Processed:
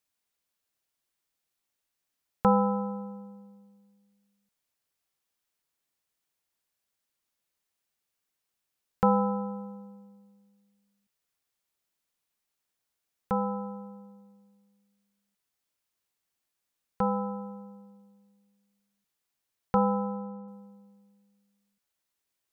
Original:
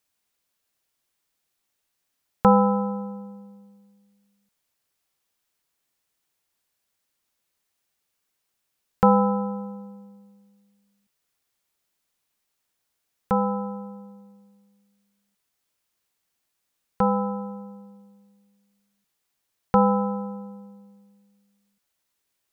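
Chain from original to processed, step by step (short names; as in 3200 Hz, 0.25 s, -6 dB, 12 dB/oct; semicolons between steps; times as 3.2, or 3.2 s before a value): 19.77–20.48 LPF 1900 Hz 12 dB/oct; gain -6 dB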